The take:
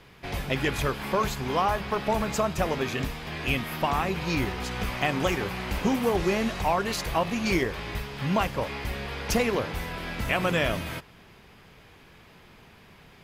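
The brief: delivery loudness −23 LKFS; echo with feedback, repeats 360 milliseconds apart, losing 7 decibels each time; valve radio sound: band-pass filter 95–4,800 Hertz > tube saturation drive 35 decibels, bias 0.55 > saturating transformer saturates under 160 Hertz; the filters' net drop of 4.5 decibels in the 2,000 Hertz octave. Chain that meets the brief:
band-pass filter 95–4,800 Hz
parametric band 2,000 Hz −5.5 dB
repeating echo 360 ms, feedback 45%, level −7 dB
tube saturation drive 35 dB, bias 0.55
saturating transformer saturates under 160 Hz
level +16.5 dB

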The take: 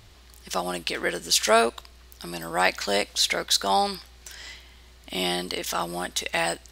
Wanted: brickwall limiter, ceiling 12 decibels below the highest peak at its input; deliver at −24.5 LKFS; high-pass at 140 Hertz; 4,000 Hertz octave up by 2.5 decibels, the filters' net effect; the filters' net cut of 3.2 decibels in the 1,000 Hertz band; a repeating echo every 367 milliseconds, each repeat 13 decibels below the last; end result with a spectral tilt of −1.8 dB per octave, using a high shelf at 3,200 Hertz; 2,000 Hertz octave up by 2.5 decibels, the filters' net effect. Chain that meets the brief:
high-pass filter 140 Hz
parametric band 1,000 Hz −5.5 dB
parametric band 2,000 Hz +5 dB
high-shelf EQ 3,200 Hz −6.5 dB
parametric band 4,000 Hz +6.5 dB
brickwall limiter −14 dBFS
repeating echo 367 ms, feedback 22%, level −13 dB
level +3 dB

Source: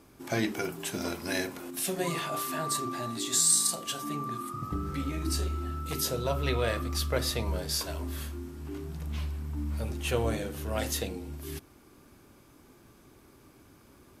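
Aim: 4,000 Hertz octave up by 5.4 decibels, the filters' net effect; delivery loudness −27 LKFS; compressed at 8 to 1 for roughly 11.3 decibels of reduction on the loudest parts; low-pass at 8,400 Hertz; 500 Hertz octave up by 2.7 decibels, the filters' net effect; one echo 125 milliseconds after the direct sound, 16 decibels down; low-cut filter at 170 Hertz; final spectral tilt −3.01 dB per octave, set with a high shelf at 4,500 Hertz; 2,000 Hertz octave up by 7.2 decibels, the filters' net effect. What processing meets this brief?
high-pass filter 170 Hz
low-pass filter 8,400 Hz
parametric band 500 Hz +3 dB
parametric band 2,000 Hz +8 dB
parametric band 4,000 Hz +8 dB
high-shelf EQ 4,500 Hz −6 dB
downward compressor 8 to 1, threshold −33 dBFS
single-tap delay 125 ms −16 dB
level +10 dB

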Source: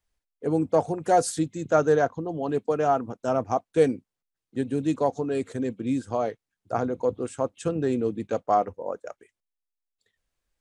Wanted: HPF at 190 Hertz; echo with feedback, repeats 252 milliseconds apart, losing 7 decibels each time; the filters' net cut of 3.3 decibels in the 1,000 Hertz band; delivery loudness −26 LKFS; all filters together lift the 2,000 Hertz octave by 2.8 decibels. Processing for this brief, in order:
high-pass filter 190 Hz
parametric band 1,000 Hz −7 dB
parametric band 2,000 Hz +7 dB
repeating echo 252 ms, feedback 45%, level −7 dB
level +1 dB

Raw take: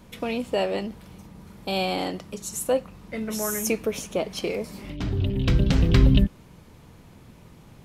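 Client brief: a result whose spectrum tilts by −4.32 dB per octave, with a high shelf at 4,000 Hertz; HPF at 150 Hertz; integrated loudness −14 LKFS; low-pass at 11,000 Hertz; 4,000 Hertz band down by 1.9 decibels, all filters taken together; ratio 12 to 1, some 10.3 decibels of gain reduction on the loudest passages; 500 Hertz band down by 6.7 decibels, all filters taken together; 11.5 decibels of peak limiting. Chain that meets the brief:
high-pass filter 150 Hz
low-pass filter 11,000 Hz
parametric band 500 Hz −8 dB
high-shelf EQ 4,000 Hz +3.5 dB
parametric band 4,000 Hz −4.5 dB
downward compressor 12 to 1, threshold −29 dBFS
level +26 dB
brickwall limiter −4 dBFS

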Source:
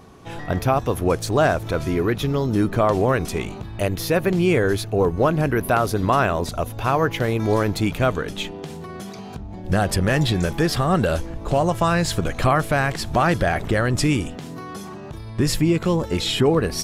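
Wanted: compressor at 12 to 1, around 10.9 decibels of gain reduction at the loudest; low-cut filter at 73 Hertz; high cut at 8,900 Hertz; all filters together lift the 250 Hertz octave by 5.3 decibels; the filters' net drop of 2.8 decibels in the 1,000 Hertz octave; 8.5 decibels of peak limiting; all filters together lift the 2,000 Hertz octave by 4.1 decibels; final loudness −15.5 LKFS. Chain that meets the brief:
high-pass filter 73 Hz
low-pass filter 8,900 Hz
parametric band 250 Hz +8 dB
parametric band 1,000 Hz −7 dB
parametric band 2,000 Hz +8 dB
downward compressor 12 to 1, threshold −21 dBFS
level +14 dB
brickwall limiter −5.5 dBFS

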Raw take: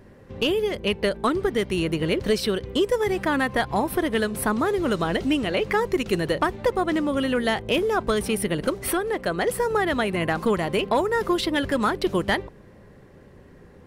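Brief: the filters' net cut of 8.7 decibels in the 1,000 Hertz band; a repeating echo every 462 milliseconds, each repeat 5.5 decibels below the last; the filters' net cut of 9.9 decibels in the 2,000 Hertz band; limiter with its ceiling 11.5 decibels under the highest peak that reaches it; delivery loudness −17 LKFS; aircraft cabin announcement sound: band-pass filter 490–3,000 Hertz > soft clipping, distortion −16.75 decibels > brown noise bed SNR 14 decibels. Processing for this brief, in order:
parametric band 1,000 Hz −9 dB
parametric band 2,000 Hz −8.5 dB
brickwall limiter −25 dBFS
band-pass filter 490–3,000 Hz
repeating echo 462 ms, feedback 53%, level −5.5 dB
soft clipping −31.5 dBFS
brown noise bed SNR 14 dB
level +22.5 dB

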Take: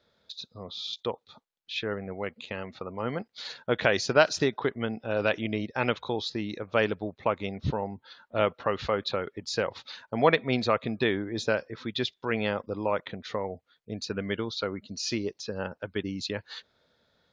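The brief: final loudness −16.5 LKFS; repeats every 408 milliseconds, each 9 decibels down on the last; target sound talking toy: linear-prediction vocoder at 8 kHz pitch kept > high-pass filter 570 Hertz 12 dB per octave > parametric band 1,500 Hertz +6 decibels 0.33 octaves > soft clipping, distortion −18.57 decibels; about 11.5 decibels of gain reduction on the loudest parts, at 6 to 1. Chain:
downward compressor 6 to 1, threshold −27 dBFS
repeating echo 408 ms, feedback 35%, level −9 dB
linear-prediction vocoder at 8 kHz pitch kept
high-pass filter 570 Hz 12 dB per octave
parametric band 1,500 Hz +6 dB 0.33 octaves
soft clipping −23 dBFS
level +22 dB

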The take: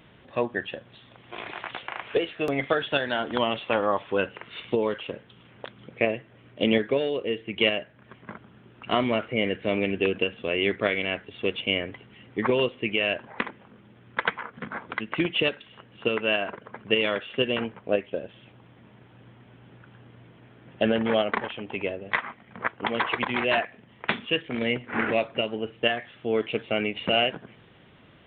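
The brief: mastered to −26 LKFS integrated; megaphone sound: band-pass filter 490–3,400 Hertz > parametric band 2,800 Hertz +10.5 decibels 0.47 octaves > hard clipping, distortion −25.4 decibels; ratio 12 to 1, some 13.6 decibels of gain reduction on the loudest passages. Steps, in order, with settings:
downward compressor 12 to 1, threshold −32 dBFS
band-pass filter 490–3,400 Hz
parametric band 2,800 Hz +10.5 dB 0.47 octaves
hard clipping −19.5 dBFS
level +9 dB

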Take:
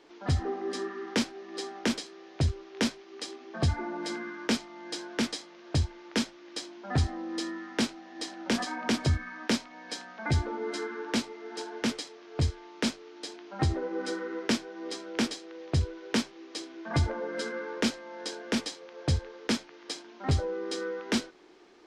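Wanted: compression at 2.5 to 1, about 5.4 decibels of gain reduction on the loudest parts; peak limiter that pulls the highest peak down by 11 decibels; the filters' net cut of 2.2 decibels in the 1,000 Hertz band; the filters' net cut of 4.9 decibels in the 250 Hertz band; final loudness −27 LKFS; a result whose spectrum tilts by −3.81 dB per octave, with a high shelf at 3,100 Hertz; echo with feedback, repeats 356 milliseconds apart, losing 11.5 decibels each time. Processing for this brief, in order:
parametric band 250 Hz −6 dB
parametric band 1,000 Hz −3 dB
high-shelf EQ 3,100 Hz +4 dB
downward compressor 2.5 to 1, threshold −30 dBFS
brickwall limiter −24.5 dBFS
repeating echo 356 ms, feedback 27%, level −11.5 dB
level +11 dB

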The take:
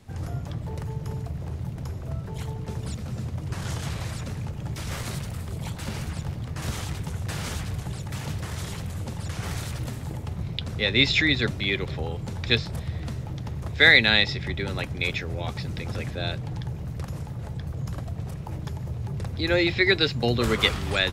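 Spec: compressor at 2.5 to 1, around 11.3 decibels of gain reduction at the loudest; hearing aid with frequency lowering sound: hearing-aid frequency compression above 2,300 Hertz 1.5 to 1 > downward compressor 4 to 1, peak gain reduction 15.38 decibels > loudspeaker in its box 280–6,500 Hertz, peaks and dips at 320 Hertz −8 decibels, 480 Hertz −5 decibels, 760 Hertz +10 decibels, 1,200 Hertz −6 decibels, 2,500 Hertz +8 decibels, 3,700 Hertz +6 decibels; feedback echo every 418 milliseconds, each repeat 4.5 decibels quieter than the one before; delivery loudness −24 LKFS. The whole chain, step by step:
downward compressor 2.5 to 1, threshold −28 dBFS
repeating echo 418 ms, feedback 60%, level −4.5 dB
hearing-aid frequency compression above 2,300 Hz 1.5 to 1
downward compressor 4 to 1, threshold −40 dBFS
loudspeaker in its box 280–6,500 Hz, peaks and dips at 320 Hz −8 dB, 480 Hz −5 dB, 760 Hz +10 dB, 1,200 Hz −6 dB, 2,500 Hz +8 dB, 3,700 Hz +6 dB
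level +19 dB

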